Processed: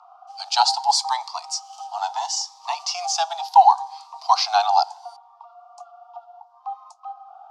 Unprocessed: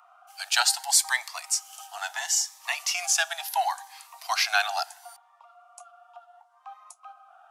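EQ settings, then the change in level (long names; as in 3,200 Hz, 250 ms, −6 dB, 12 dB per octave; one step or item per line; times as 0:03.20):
low-shelf EQ 490 Hz +11.5 dB
dynamic equaliser 950 Hz, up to +5 dB, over −42 dBFS, Q 4.5
drawn EQ curve 320 Hz 0 dB, 540 Hz −8 dB, 810 Hz +11 dB, 1,200 Hz +3 dB, 1,700 Hz −16 dB, 4,800 Hz +6 dB, 13,000 Hz −26 dB
0.0 dB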